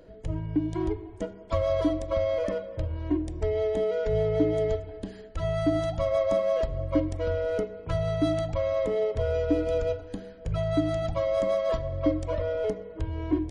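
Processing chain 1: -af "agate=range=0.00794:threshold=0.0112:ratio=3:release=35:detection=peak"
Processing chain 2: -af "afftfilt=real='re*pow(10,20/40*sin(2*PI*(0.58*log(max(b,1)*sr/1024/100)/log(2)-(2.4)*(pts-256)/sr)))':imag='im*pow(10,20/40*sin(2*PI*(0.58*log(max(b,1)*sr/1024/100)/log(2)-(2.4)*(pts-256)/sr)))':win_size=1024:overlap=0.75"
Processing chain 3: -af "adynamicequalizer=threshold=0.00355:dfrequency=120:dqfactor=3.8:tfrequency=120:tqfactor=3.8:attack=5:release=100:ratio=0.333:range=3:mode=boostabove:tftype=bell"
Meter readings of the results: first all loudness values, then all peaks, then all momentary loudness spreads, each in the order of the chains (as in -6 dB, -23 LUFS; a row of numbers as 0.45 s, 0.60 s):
-28.0 LUFS, -23.5 LUFS, -28.0 LUFS; -12.5 dBFS, -6.0 dBFS, -12.0 dBFS; 9 LU, 11 LU, 8 LU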